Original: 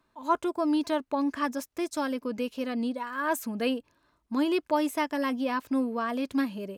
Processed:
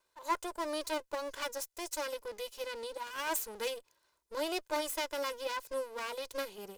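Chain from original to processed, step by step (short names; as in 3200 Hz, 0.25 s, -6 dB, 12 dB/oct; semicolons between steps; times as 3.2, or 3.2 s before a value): minimum comb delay 2 ms; tone controls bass -10 dB, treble +11 dB; gain -6 dB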